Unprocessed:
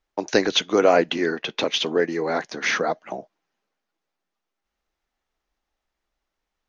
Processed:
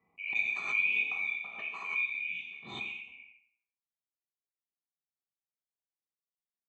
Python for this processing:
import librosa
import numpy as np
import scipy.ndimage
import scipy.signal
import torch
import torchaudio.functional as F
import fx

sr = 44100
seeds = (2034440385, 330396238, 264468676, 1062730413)

y = fx.band_swap(x, sr, width_hz=2000)
y = fx.env_lowpass(y, sr, base_hz=1500.0, full_db=-16.0)
y = fx.highpass(y, sr, hz=120.0, slope=24, at=(0.56, 2.71))
y = fx.env_lowpass(y, sr, base_hz=970.0, full_db=-19.0)
y = fx.vowel_filter(y, sr, vowel='u')
y = y + 0.97 * np.pad(y, (int(1.7 * sr / 1000.0), 0))[:len(y)]
y = fx.echo_feedback(y, sr, ms=88, feedback_pct=36, wet_db=-11.0)
y = fx.rev_gated(y, sr, seeds[0], gate_ms=250, shape='falling', drr_db=-2.5)
y = fx.pre_swell(y, sr, db_per_s=74.0)
y = y * librosa.db_to_amplitude(-9.0)